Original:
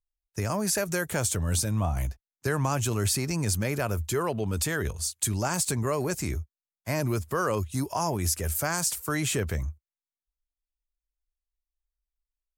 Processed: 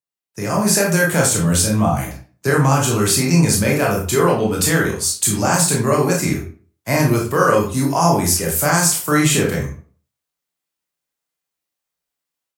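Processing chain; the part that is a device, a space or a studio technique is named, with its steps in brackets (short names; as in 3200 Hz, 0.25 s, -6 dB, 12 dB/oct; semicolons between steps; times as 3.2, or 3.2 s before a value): far laptop microphone (reverb RT60 0.40 s, pre-delay 20 ms, DRR -2 dB; HPF 110 Hz 24 dB/oct; AGC gain up to 10 dB)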